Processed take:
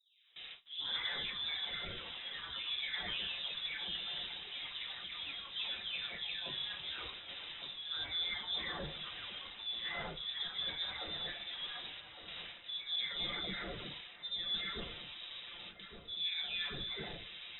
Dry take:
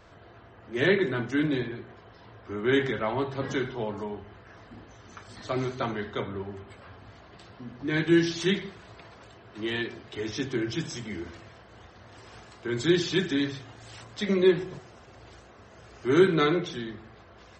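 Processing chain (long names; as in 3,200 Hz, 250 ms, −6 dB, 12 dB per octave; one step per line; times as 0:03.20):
every frequency bin delayed by itself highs late, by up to 737 ms
noise gate with hold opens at −43 dBFS
reversed playback
downward compressor 4 to 1, threshold −45 dBFS, peak gain reduction 23.5 dB
reversed playback
delay with pitch and tempo change per echo 105 ms, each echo +4 semitones, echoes 3, each echo −6 dB
on a send: delay with a high-pass on its return 1,159 ms, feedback 46%, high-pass 2,400 Hz, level −9 dB
on the sum: voice inversion scrambler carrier 3,800 Hz
level +4 dB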